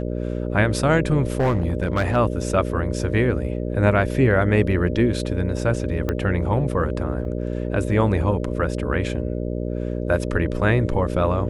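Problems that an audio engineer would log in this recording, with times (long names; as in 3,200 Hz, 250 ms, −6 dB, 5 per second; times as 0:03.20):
mains buzz 60 Hz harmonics 10 −26 dBFS
0:01.35–0:02.17: clipping −15.5 dBFS
0:06.09: click −11 dBFS
0:07.25: drop-out 2.9 ms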